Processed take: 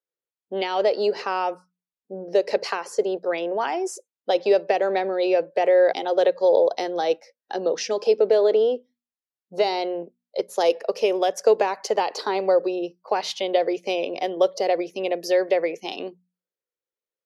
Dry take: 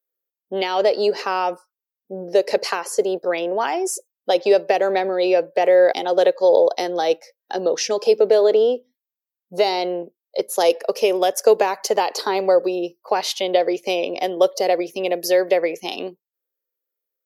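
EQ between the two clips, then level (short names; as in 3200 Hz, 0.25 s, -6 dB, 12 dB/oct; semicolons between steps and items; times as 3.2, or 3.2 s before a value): air absorption 64 m; notches 60/120/180/240 Hz; -3.0 dB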